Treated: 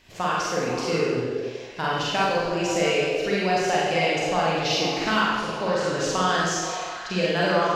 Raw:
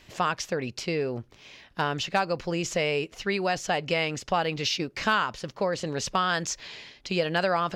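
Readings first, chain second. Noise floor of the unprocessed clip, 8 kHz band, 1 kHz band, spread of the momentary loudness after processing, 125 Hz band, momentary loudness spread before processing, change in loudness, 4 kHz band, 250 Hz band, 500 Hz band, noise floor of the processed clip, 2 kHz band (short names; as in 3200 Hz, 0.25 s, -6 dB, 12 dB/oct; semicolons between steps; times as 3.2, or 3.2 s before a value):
-58 dBFS, +4.0 dB, +4.5 dB, 5 LU, +3.0 dB, 7 LU, +4.0 dB, +4.0 dB, +5.0 dB, +5.5 dB, -36 dBFS, +3.5 dB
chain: delay with a stepping band-pass 0.164 s, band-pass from 310 Hz, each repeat 0.7 oct, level -2.5 dB; Schroeder reverb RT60 1.2 s, combs from 33 ms, DRR -5.5 dB; gain -3 dB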